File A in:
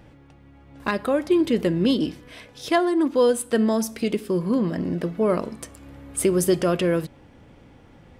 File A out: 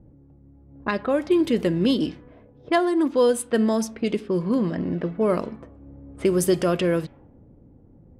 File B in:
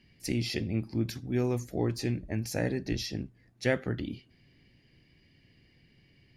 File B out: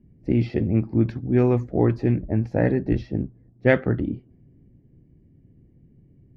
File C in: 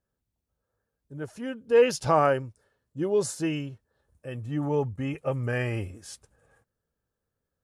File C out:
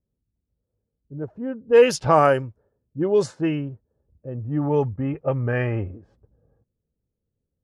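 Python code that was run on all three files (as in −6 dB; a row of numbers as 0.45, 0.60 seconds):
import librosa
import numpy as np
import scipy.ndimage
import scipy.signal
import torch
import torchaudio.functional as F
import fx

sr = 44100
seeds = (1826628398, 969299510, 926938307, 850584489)

y = fx.env_lowpass(x, sr, base_hz=350.0, full_db=-17.5)
y = y * 10.0 ** (-24 / 20.0) / np.sqrt(np.mean(np.square(y)))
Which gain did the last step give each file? −0.5, +10.0, +5.5 decibels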